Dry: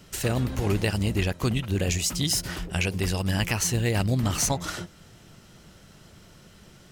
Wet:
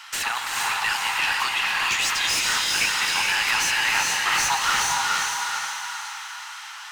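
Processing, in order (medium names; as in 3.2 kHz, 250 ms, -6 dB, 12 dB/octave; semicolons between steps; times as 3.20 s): saturation -23.5 dBFS, distortion -11 dB; elliptic high-pass 850 Hz, stop band 40 dB; echo that smears into a reverb 451 ms, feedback 45%, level -5 dB; overdrive pedal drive 18 dB, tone 2.3 kHz, clips at -18 dBFS; gated-style reverb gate 490 ms rising, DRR 1.5 dB; trim +7 dB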